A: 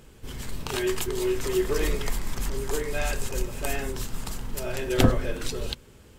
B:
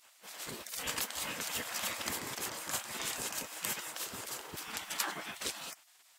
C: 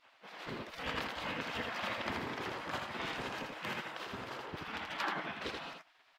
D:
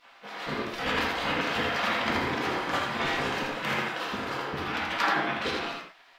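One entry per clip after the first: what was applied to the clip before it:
spectral gate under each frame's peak -25 dB weak
distance through air 330 m; delay 81 ms -4.5 dB; trim +3.5 dB
reverberation, pre-delay 4 ms, DRR -0.5 dB; trim +7.5 dB

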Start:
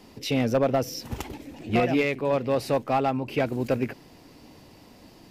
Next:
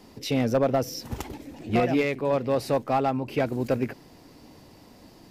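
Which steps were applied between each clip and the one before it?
peaking EQ 2.7 kHz -3.5 dB 0.71 oct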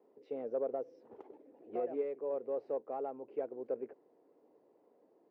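ladder band-pass 500 Hz, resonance 55%; wow and flutter 24 cents; trim -4.5 dB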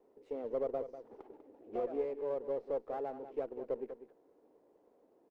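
delay 195 ms -11.5 dB; sliding maximum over 5 samples

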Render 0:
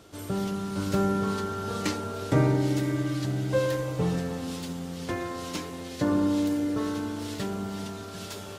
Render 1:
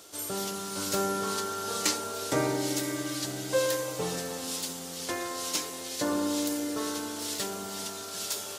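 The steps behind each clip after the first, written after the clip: tone controls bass -15 dB, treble +12 dB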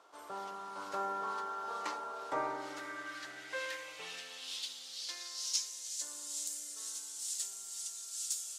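band-pass sweep 1 kHz -> 7.6 kHz, 2.34–6.09 s; trim +1 dB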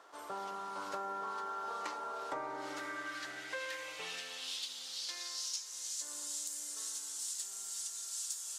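compression 6:1, threshold -40 dBFS, peak gain reduction 11.5 dB; band noise 830–1900 Hz -73 dBFS; trim +3 dB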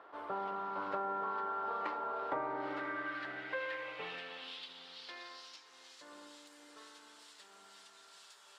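distance through air 440 m; trim +5 dB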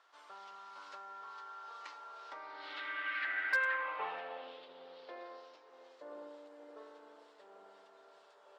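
band-pass sweep 6.5 kHz -> 530 Hz, 2.21–4.58 s; overload inside the chain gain 36 dB; trim +11.5 dB

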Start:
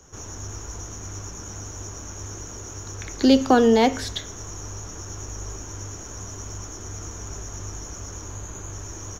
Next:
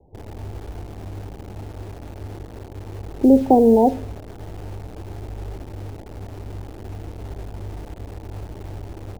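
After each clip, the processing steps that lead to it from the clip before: steep low-pass 900 Hz 96 dB/octave; in parallel at -7 dB: bit crusher 6-bit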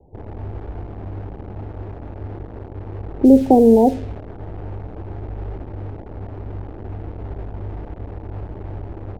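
level-controlled noise filter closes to 1.3 kHz, open at -11 dBFS; dynamic bell 1 kHz, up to -6 dB, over -34 dBFS, Q 1.4; trim +3 dB

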